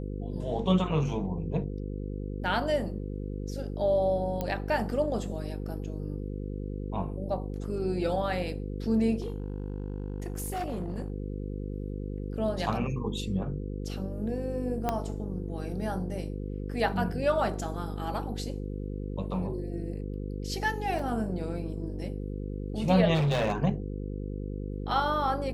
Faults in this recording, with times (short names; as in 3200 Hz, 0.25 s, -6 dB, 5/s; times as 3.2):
buzz 50 Hz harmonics 10 -35 dBFS
4.41 pop -18 dBFS
9.2–11.1 clipped -28.5 dBFS
14.89 pop -14 dBFS
20.99 gap 3.4 ms
23.14–23.58 clipped -23 dBFS